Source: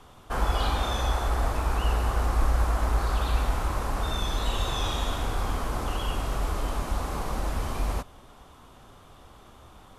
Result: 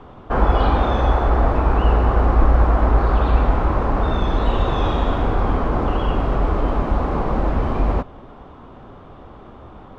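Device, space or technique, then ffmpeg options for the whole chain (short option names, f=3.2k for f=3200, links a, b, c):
phone in a pocket: -af "lowpass=3.2k,equalizer=f=310:t=o:w=2.6:g=5.5,highshelf=f=2.5k:g=-10,volume=8.5dB"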